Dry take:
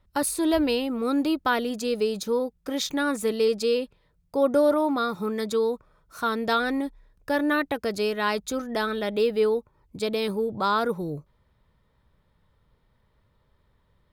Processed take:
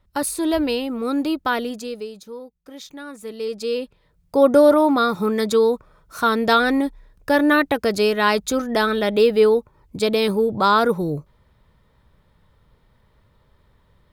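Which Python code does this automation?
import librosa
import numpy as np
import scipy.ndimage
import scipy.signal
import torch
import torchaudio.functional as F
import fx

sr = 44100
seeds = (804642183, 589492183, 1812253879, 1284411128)

y = fx.gain(x, sr, db=fx.line((1.65, 2.0), (2.2, -10.5), (3.12, -10.5), (3.79, 1.0), (4.37, 7.5)))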